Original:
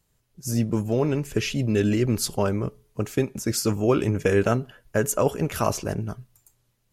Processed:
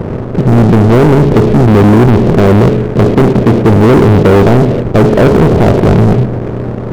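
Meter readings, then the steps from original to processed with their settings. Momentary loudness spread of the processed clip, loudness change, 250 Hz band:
5 LU, +17.5 dB, +18.5 dB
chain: per-bin compression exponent 0.4; Gaussian blur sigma 15 samples; sample leveller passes 5; gain +5 dB

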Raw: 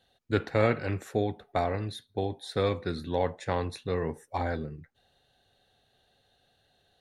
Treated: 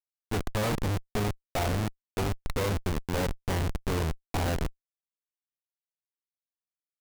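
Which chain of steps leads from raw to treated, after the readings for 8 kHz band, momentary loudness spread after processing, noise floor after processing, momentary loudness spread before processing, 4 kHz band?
+11.5 dB, 4 LU, under -85 dBFS, 8 LU, +3.0 dB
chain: Schmitt trigger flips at -31 dBFS; gain +5 dB

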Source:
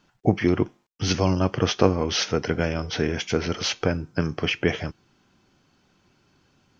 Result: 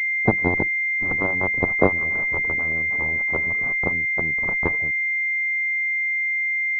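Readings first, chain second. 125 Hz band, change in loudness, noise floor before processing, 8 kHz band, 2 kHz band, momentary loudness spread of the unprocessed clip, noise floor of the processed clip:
-6.0 dB, +4.0 dB, -65 dBFS, n/a, +15.5 dB, 6 LU, -23 dBFS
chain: backlash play -41 dBFS; added harmonics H 4 -16 dB, 5 -31 dB, 7 -14 dB, 8 -33 dB, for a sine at -1.5 dBFS; pulse-width modulation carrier 2100 Hz; gain +4.5 dB

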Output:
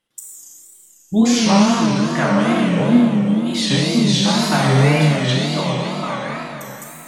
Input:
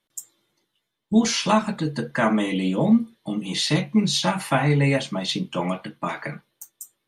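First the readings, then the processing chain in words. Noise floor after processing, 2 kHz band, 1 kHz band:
-49 dBFS, +5.5 dB, +5.0 dB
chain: Schroeder reverb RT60 3.1 s, combs from 28 ms, DRR -4 dB; wow and flutter 150 cents

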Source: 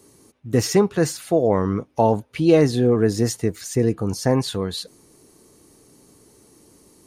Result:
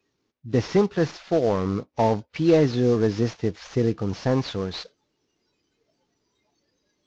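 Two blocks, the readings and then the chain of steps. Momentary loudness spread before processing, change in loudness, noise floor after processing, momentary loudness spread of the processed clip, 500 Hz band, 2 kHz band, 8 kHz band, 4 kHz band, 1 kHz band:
9 LU, -3.0 dB, -75 dBFS, 9 LU, -3.0 dB, -2.5 dB, -14.5 dB, -5.0 dB, -3.5 dB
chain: CVSD 32 kbps; spectral noise reduction 18 dB; gain -2.5 dB

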